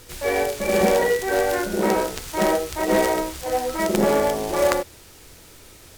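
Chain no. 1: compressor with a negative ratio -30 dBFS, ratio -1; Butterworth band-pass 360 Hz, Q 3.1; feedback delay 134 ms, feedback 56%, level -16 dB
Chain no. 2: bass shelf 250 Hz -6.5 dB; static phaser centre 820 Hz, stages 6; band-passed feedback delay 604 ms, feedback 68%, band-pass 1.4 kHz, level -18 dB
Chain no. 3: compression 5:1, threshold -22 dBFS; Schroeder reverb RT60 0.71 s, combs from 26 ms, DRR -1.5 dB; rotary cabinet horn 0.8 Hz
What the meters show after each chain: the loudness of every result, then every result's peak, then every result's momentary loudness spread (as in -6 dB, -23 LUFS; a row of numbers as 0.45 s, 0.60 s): -37.5 LUFS, -25.0 LUFS, -24.5 LUFS; -22.5 dBFS, -7.0 dBFS, -8.5 dBFS; 16 LU, 8 LU, 5 LU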